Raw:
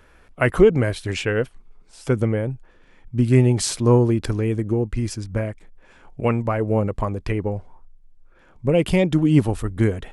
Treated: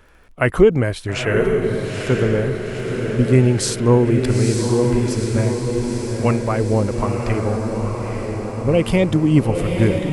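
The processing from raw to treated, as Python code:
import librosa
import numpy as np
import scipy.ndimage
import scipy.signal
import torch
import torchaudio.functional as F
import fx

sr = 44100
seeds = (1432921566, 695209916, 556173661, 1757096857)

y = fx.echo_diffused(x, sr, ms=915, feedback_pct=63, wet_db=-4)
y = fx.dmg_crackle(y, sr, seeds[0], per_s=30.0, level_db=-45.0)
y = y * librosa.db_to_amplitude(1.5)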